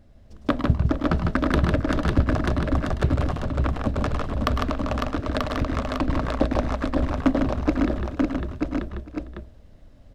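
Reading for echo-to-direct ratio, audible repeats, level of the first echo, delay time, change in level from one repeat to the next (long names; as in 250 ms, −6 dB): 2.0 dB, 11, −9.5 dB, 105 ms, repeats not evenly spaced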